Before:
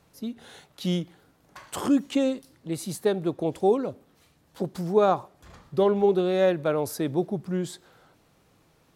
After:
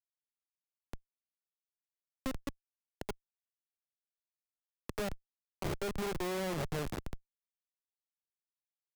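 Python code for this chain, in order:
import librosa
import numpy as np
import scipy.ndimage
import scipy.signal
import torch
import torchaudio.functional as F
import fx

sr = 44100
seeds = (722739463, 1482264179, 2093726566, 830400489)

p1 = fx.spec_swells(x, sr, rise_s=0.32)
p2 = fx.high_shelf(p1, sr, hz=11000.0, db=-6.0)
p3 = p2 + fx.echo_single(p2, sr, ms=533, db=-20.0, dry=0)
p4 = fx.level_steps(p3, sr, step_db=13)
p5 = fx.noise_reduce_blind(p4, sr, reduce_db=21)
p6 = fx.cheby_harmonics(p5, sr, harmonics=(2, 3, 4, 6), levels_db=(-10, -25, -35, -13), full_scale_db=-14.5)
p7 = fx.auto_swell(p6, sr, attack_ms=587.0)
p8 = fx.peak_eq(p7, sr, hz=1100.0, db=-6.0, octaves=1.0)
p9 = fx.auto_swell(p8, sr, attack_ms=259.0)
p10 = fx.schmitt(p9, sr, flips_db=-45.0)
p11 = fx.band_squash(p10, sr, depth_pct=40)
y = p11 * librosa.db_to_amplitude(6.5)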